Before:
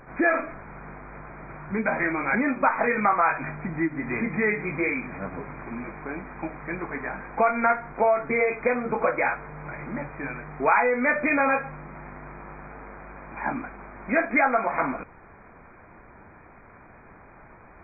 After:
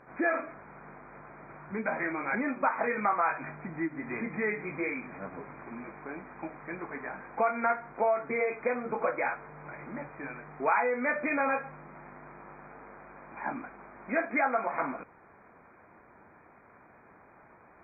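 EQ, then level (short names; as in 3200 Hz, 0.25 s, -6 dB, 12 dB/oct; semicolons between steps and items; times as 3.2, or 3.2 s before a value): HPF 220 Hz 6 dB/oct; LPF 2300 Hz 6 dB/oct; -5.0 dB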